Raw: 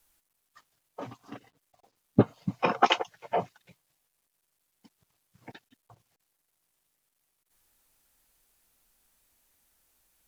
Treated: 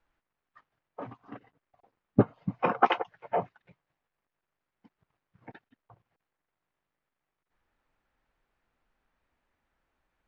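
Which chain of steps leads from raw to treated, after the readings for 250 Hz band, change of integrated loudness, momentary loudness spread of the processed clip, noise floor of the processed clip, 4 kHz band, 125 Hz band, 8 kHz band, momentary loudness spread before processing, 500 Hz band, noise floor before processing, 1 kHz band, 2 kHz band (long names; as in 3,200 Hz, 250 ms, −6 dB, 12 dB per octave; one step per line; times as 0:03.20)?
−1.0 dB, 0.0 dB, 18 LU, below −85 dBFS, −9.5 dB, −1.0 dB, can't be measured, 19 LU, −0.5 dB, −79 dBFS, −0.5 dB, −2.5 dB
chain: Chebyshev low-pass filter 1,700 Hz, order 2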